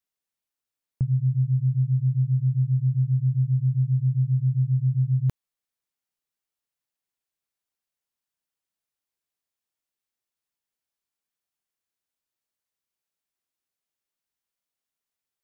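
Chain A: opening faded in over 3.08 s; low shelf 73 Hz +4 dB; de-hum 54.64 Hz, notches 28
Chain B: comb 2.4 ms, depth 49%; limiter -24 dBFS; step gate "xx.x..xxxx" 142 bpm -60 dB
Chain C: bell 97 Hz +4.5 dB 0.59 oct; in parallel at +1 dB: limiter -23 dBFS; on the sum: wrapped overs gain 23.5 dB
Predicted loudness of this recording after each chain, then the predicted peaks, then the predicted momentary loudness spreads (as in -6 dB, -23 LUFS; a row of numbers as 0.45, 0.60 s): -24.0, -31.5, -28.0 LUFS; -15.0, -24.0, -23.5 dBFS; 7, 4, 1 LU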